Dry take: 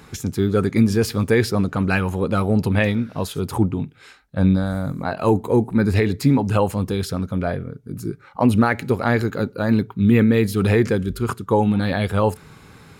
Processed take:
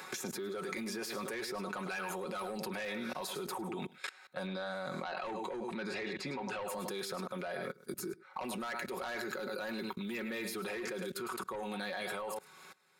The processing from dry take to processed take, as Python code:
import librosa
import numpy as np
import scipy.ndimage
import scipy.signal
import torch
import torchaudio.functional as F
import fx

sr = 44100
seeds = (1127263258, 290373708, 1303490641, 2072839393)

y = fx.fade_out_tail(x, sr, length_s=1.88)
y = scipy.signal.sosfilt(scipy.signal.butter(2, 540.0, 'highpass', fs=sr, output='sos'), y)
y = fx.notch(y, sr, hz=3000.0, q=19.0)
y = y + 0.65 * np.pad(y, (int(5.4 * sr / 1000.0), 0))[:len(y)]
y = y + 10.0 ** (-14.0 / 20.0) * np.pad(y, (int(103 * sr / 1000.0), 0))[:len(y)]
y = 10.0 ** (-19.0 / 20.0) * np.tanh(y / 10.0 ** (-19.0 / 20.0))
y = fx.level_steps(y, sr, step_db=22)
y = fx.lowpass(y, sr, hz=4700.0, slope=12, at=(4.47, 6.68))
y = fx.band_squash(y, sr, depth_pct=70)
y = y * 10.0 ** (4.5 / 20.0)